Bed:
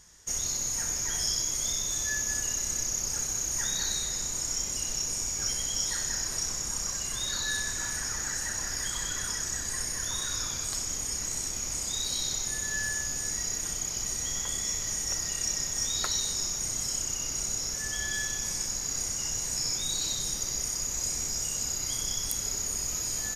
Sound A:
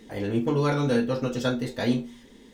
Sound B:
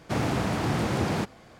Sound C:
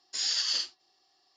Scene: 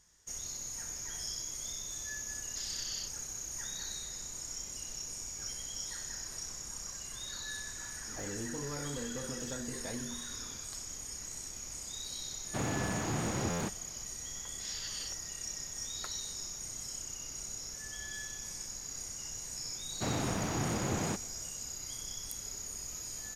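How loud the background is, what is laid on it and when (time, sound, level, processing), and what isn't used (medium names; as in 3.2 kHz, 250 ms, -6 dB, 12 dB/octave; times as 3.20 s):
bed -10.5 dB
2.42 s: add C -8 dB + peak limiter -25 dBFS
8.07 s: add A -5 dB + compression, threshold -33 dBFS
12.44 s: add B -8 dB + buffer glitch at 1.06 s
14.46 s: add C -10 dB + low-pass 3.9 kHz
19.91 s: add B -7.5 dB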